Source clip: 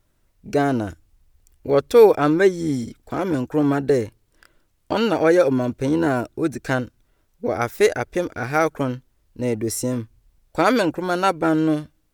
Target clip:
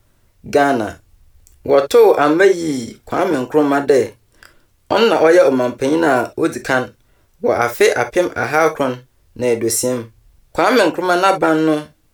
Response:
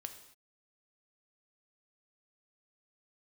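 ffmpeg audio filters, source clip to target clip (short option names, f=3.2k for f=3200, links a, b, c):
-filter_complex "[0:a]acrossover=split=290|1100|2800[a][b][c][d];[a]acompressor=threshold=-40dB:ratio=10[e];[e][b][c][d]amix=inputs=4:normalize=0[f];[1:a]atrim=start_sample=2205,afade=t=out:st=0.17:d=0.01,atrim=end_sample=7938,asetrate=74970,aresample=44100[g];[f][g]afir=irnorm=-1:irlink=0,alimiter=level_in=18.5dB:limit=-1dB:release=50:level=0:latency=1,volume=-1dB"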